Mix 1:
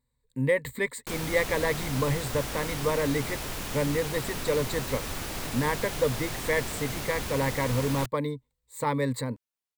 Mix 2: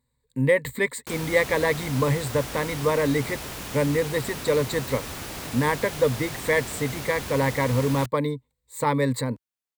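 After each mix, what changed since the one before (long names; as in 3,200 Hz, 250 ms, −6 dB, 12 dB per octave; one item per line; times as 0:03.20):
speech +4.5 dB
master: add high-pass filter 50 Hz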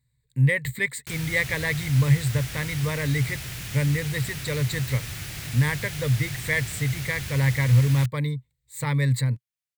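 master: add octave-band graphic EQ 125/250/500/1,000/2,000 Hz +11/−10/−8/−10/+4 dB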